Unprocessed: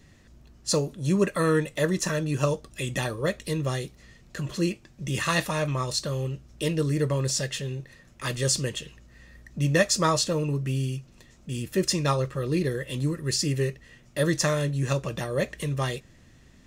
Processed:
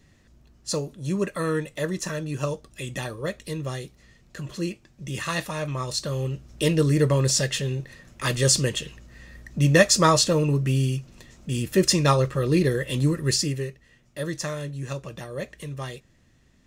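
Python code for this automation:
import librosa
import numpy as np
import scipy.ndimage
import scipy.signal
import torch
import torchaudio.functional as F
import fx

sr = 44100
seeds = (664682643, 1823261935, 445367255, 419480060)

y = fx.gain(x, sr, db=fx.line((5.56, -3.0), (6.64, 5.0), (13.29, 5.0), (13.7, -6.0)))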